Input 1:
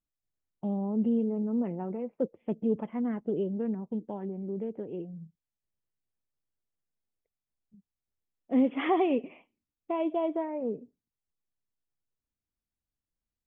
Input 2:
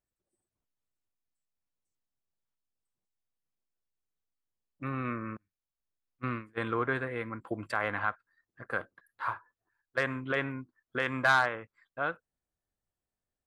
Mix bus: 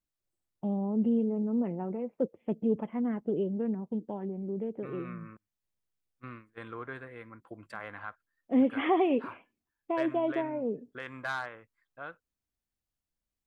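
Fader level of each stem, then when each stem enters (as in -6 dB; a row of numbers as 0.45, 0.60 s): 0.0, -10.5 dB; 0.00, 0.00 s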